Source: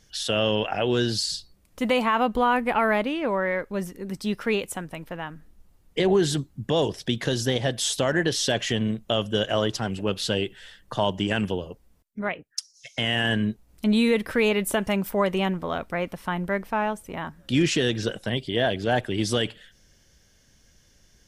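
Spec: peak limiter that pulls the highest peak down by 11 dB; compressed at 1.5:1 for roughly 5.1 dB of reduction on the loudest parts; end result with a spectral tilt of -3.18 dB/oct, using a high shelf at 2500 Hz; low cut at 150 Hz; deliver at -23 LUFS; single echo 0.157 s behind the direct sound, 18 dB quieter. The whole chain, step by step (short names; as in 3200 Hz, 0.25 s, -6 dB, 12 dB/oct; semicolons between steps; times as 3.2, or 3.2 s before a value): HPF 150 Hz; high shelf 2500 Hz +7 dB; compressor 1.5:1, threshold -31 dBFS; limiter -20 dBFS; echo 0.157 s -18 dB; gain +8 dB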